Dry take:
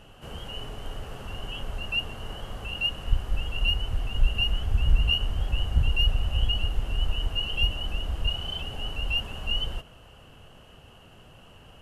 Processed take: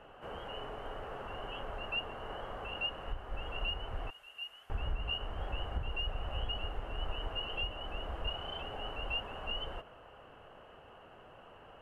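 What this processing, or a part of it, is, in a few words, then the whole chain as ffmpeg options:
DJ mixer with the lows and highs turned down: -filter_complex "[0:a]asettb=1/sr,asplit=3[a][b][c];[a]atrim=end=4.104[d];[b]atrim=start=4.1:end=4.7,asetpts=PTS-STARTPTS,afade=t=in:d=0.004:c=qsin,afade=t=out:st=0.596:d=0.004:c=qsin,aderivative[e];[c]atrim=start=4.696[f];[d][e]acrossfade=d=0.004:c1=hsin:c2=qsin[g];[g][f]acrossfade=d=0.004:c1=qsin:c2=hsin,acrossover=split=350 2100:gain=0.2 1 0.0891[h][i][j];[h][i][j]amix=inputs=3:normalize=0,alimiter=level_in=4dB:limit=-24dB:level=0:latency=1:release=375,volume=-4dB,volume=2dB"

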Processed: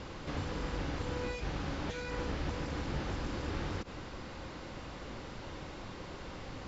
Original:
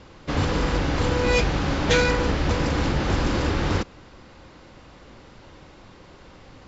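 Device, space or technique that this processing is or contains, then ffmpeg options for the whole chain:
de-esser from a sidechain: -filter_complex "[0:a]asplit=2[a][b];[b]highpass=5.2k,apad=whole_len=294434[c];[a][c]sidechaincompress=threshold=-60dB:ratio=5:attack=1.2:release=44,volume=3.5dB"

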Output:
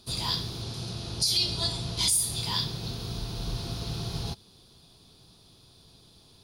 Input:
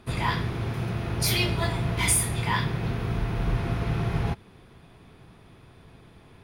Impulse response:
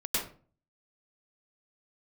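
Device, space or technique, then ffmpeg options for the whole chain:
over-bright horn tweeter: -filter_complex "[0:a]asettb=1/sr,asplit=3[a][b][c];[a]atrim=end=0.624[d];[b]atrim=start=0.62:end=2.09,asetpts=PTS-STARTPTS,afade=t=in:d=0.004:c=qsin,afade=t=out:st=1.466:d=0.004:c=qsin,lowpass=f=11k:w=0.5412,lowpass=f=11k:w=1.3066[e];[c]atrim=start=2.086[f];[d][e]acrossfade=d=0.004:c1=hsin:c2=qsin[g];[g][f]acrossfade=d=0.004:c1=qsin:c2=hsin,highshelf=f=3k:t=q:w=3:g=13.5,alimiter=limit=-7dB:level=0:latency=1:release=170,volume=-7.5dB"

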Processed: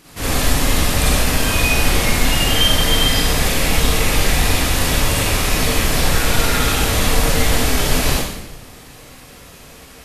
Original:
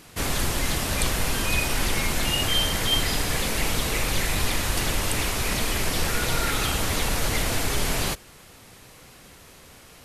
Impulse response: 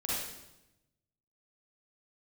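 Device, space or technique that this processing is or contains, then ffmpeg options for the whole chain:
bathroom: -filter_complex "[1:a]atrim=start_sample=2205[a];[0:a][a]afir=irnorm=-1:irlink=0,volume=2.5dB"

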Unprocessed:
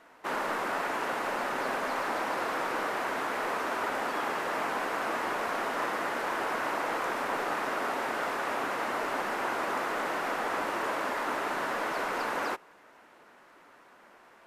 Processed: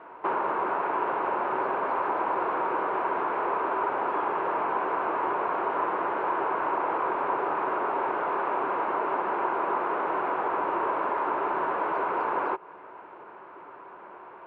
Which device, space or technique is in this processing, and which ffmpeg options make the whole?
bass amplifier: -filter_complex "[0:a]asettb=1/sr,asplit=3[a][b][c];[a]atrim=end=8.294[d];[b]atrim=start=8.29:end=10.09,asetpts=PTS-STARTPTS,afade=t=in:d=0.004:c=qsin,afade=t=out:st=1.796:d=0.004:c=qsin,highpass=f=120:w=0.5412,highpass=f=120:w=1.3066[e];[c]atrim=start=10.086[f];[d][e]acrossfade=d=0.004:c1=hsin:c2=qsin[g];[g][f]acrossfade=d=0.004:c1=qsin:c2=hsin,acompressor=threshold=-38dB:ratio=3,highpass=70,equalizer=f=240:t=q:w=4:g=-8,equalizer=f=380:t=q:w=4:g=8,equalizer=f=970:t=q:w=4:g=8,equalizer=f=1.9k:t=q:w=4:g=-9,lowpass=f=2.3k:w=0.5412,lowpass=f=2.3k:w=1.3066,volume=8.5dB"

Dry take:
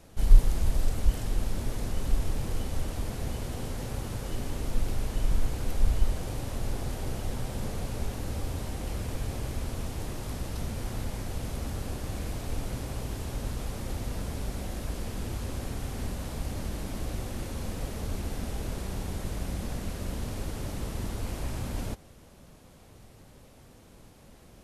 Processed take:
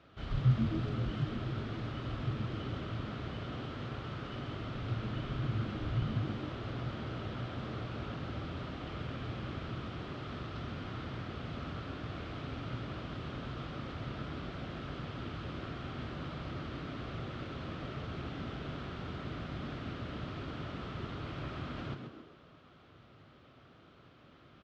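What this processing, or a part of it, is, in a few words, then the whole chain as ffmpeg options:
frequency-shifting delay pedal into a guitar cabinet: -filter_complex "[0:a]asplit=6[a][b][c][d][e][f];[b]adelay=132,afreqshift=97,volume=-7.5dB[g];[c]adelay=264,afreqshift=194,volume=-14.6dB[h];[d]adelay=396,afreqshift=291,volume=-21.8dB[i];[e]adelay=528,afreqshift=388,volume=-28.9dB[j];[f]adelay=660,afreqshift=485,volume=-36dB[k];[a][g][h][i][j][k]amix=inputs=6:normalize=0,highpass=99,equalizer=f=200:t=q:w=4:g=-6,equalizer=f=490:t=q:w=4:g=-4,equalizer=f=870:t=q:w=4:g=-6,equalizer=f=1.3k:t=q:w=4:g=10,equalizer=f=3.2k:t=q:w=4:g=4,lowpass=f=3.9k:w=0.5412,lowpass=f=3.9k:w=1.3066,volume=-4dB"

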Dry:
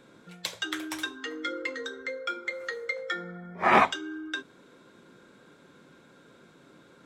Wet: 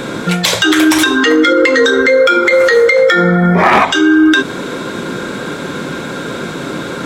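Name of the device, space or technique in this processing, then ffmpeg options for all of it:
loud club master: -af "acompressor=threshold=-34dB:ratio=2.5,asoftclip=type=hard:threshold=-24.5dB,alimiter=level_in=35dB:limit=-1dB:release=50:level=0:latency=1,volume=-1dB"

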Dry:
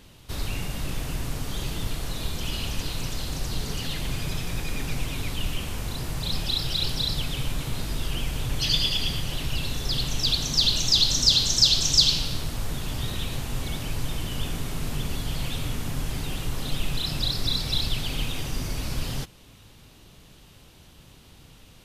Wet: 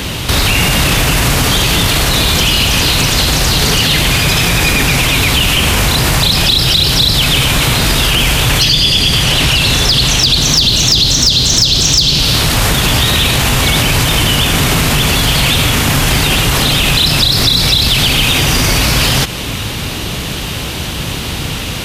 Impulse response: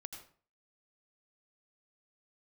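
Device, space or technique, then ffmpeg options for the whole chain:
mastering chain: -filter_complex "[0:a]asettb=1/sr,asplit=3[a][b][c];[a]atrim=end=8.694[d];[b]atrim=start=8.69:end=10.43,asetpts=PTS-STARTPTS,afade=t=in:d=0.004:c=qsin,afade=t=out:st=1.736:d=0.004:c=qsin,lowpass=12k[e];[c]atrim=start=10.426[f];[d][e]acrossfade=d=0.004:c1=hsin:c2=qsin[g];[g][f]acrossfade=d=0.004:c1=qsin:c2=hsin,highpass=43,equalizer=f=2.3k:t=o:w=1.6:g=3.5,acrossover=split=550|5600[h][i][j];[h]acompressor=threshold=-34dB:ratio=4[k];[i]acompressor=threshold=-31dB:ratio=4[l];[j]acompressor=threshold=-37dB:ratio=4[m];[k][l][m]amix=inputs=3:normalize=0,acompressor=threshold=-35dB:ratio=2,asoftclip=type=tanh:threshold=-23.5dB,asoftclip=type=hard:threshold=-27.5dB,alimiter=level_in=33.5dB:limit=-1dB:release=50:level=0:latency=1,volume=-2dB"

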